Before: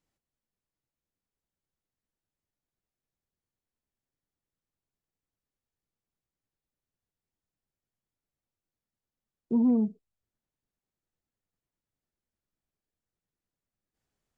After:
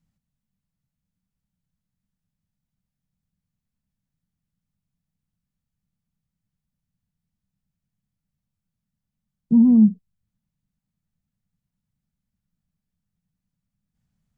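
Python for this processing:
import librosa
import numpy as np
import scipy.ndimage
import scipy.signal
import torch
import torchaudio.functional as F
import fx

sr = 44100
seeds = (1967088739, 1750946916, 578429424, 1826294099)

y = fx.low_shelf_res(x, sr, hz=260.0, db=11.5, q=3.0)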